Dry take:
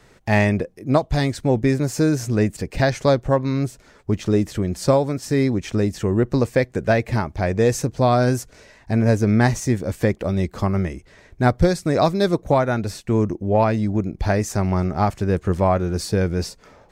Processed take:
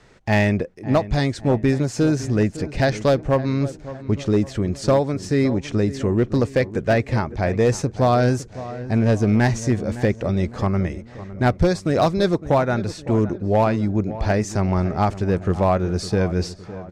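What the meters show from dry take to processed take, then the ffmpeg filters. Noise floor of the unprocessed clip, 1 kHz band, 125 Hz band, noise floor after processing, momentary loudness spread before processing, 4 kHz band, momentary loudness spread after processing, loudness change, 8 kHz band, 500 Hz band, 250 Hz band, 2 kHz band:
-52 dBFS, -0.5 dB, 0.0 dB, -42 dBFS, 6 LU, -0.5 dB, 6 LU, 0.0 dB, -2.5 dB, 0.0 dB, 0.0 dB, -0.5 dB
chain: -filter_complex "[0:a]lowpass=7200,asoftclip=type=hard:threshold=0.299,asplit=2[s0][s1];[s1]adelay=559,lowpass=f=1800:p=1,volume=0.188,asplit=2[s2][s3];[s3]adelay=559,lowpass=f=1800:p=1,volume=0.48,asplit=2[s4][s5];[s5]adelay=559,lowpass=f=1800:p=1,volume=0.48,asplit=2[s6][s7];[s7]adelay=559,lowpass=f=1800:p=1,volume=0.48[s8];[s2][s4][s6][s8]amix=inputs=4:normalize=0[s9];[s0][s9]amix=inputs=2:normalize=0"

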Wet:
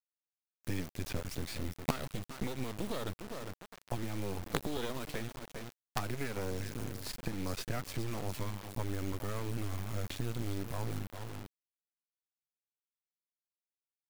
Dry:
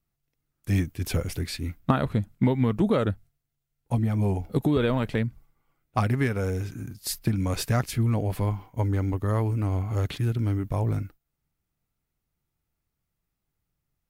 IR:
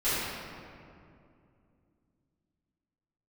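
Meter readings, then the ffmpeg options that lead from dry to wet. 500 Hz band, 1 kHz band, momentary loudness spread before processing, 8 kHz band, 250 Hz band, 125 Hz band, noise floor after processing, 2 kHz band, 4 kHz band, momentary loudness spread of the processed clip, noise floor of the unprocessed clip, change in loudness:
-11.5 dB, -10.0 dB, 8 LU, -6.5 dB, -13.5 dB, -14.5 dB, under -85 dBFS, -7.5 dB, -5.5 dB, 7 LU, -82 dBFS, -13.0 dB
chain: -filter_complex "[0:a]aecho=1:1:404|808:0.133|0.028,acrossover=split=2900|6700[s0][s1][s2];[s0]acompressor=threshold=0.0158:ratio=4[s3];[s1]acompressor=threshold=0.00398:ratio=4[s4];[s2]acompressor=threshold=0.00112:ratio=4[s5];[s3][s4][s5]amix=inputs=3:normalize=0,acrusher=bits=5:dc=4:mix=0:aa=0.000001,volume=1.5"

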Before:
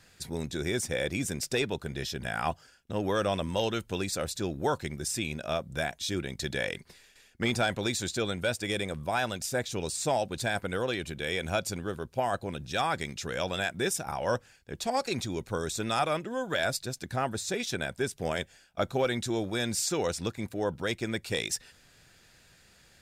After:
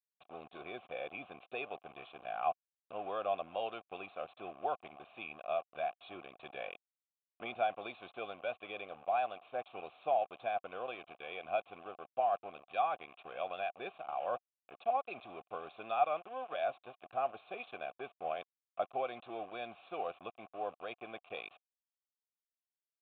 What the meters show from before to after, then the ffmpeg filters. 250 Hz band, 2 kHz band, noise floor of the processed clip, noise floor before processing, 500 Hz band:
-20.0 dB, -12.5 dB, under -85 dBFS, -60 dBFS, -7.5 dB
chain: -filter_complex "[0:a]aeval=exprs='val(0)*gte(abs(val(0)),0.0158)':c=same,asplit=3[s0][s1][s2];[s0]bandpass=f=730:t=q:w=8,volume=1[s3];[s1]bandpass=f=1090:t=q:w=8,volume=0.501[s4];[s2]bandpass=f=2440:t=q:w=8,volume=0.355[s5];[s3][s4][s5]amix=inputs=3:normalize=0,aresample=8000,aresample=44100,volume=1.33"

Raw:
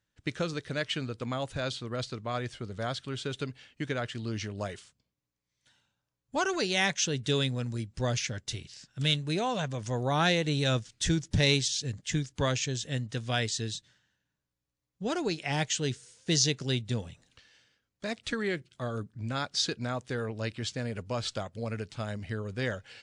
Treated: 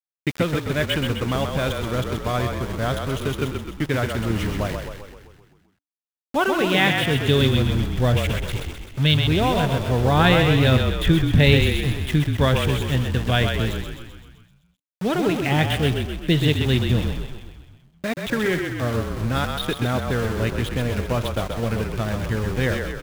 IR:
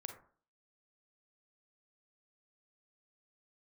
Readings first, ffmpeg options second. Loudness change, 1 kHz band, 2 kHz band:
+10.0 dB, +9.5 dB, +9.5 dB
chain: -filter_complex "[0:a]lowshelf=f=220:g=4.5,aresample=8000,aresample=44100,asplit=2[s0][s1];[1:a]atrim=start_sample=2205,asetrate=74970,aresample=44100[s2];[s1][s2]afir=irnorm=-1:irlink=0,volume=0.668[s3];[s0][s3]amix=inputs=2:normalize=0,aeval=exprs='val(0)*gte(abs(val(0)),0.0178)':c=same,asplit=9[s4][s5][s6][s7][s8][s9][s10][s11][s12];[s5]adelay=129,afreqshift=-36,volume=0.562[s13];[s6]adelay=258,afreqshift=-72,volume=0.327[s14];[s7]adelay=387,afreqshift=-108,volume=0.188[s15];[s8]adelay=516,afreqshift=-144,volume=0.11[s16];[s9]adelay=645,afreqshift=-180,volume=0.0638[s17];[s10]adelay=774,afreqshift=-216,volume=0.0367[s18];[s11]adelay=903,afreqshift=-252,volume=0.0214[s19];[s12]adelay=1032,afreqshift=-288,volume=0.0124[s20];[s4][s13][s14][s15][s16][s17][s18][s19][s20]amix=inputs=9:normalize=0,volume=2"

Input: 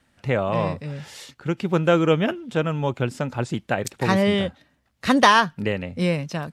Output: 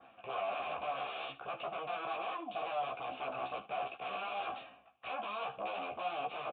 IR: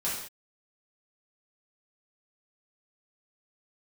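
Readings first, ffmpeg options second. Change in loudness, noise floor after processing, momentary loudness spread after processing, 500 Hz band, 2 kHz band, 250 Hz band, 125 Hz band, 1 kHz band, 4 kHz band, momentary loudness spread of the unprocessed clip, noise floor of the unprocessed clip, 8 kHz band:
-17.5 dB, -61 dBFS, 5 LU, -17.5 dB, -17.5 dB, -30.5 dB, -36.0 dB, -12.5 dB, -17.0 dB, 13 LU, -66 dBFS, under -40 dB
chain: -filter_complex "[0:a]bandreject=f=600:w=12,adynamicequalizer=threshold=0.00891:dfrequency=2800:dqfactor=1.8:tfrequency=2800:tqfactor=1.8:attack=5:release=100:ratio=0.375:range=3:mode=boostabove:tftype=bell,areverse,acompressor=threshold=0.0282:ratio=12,areverse,alimiter=level_in=1.68:limit=0.0631:level=0:latency=1:release=11,volume=0.596,aresample=11025,aeval=exprs='0.0398*sin(PI/2*5.62*val(0)/0.0398)':c=same,aresample=44100,asplit=3[s0][s1][s2];[s0]bandpass=f=730:t=q:w=8,volume=1[s3];[s1]bandpass=f=1090:t=q:w=8,volume=0.501[s4];[s2]bandpass=f=2440:t=q:w=8,volume=0.355[s5];[s3][s4][s5]amix=inputs=3:normalize=0,flanger=delay=8.7:depth=6.5:regen=67:speed=0.45:shape=sinusoidal,aecho=1:1:15|76:0.668|0.158,aresample=8000,aresample=44100,volume=2.11"

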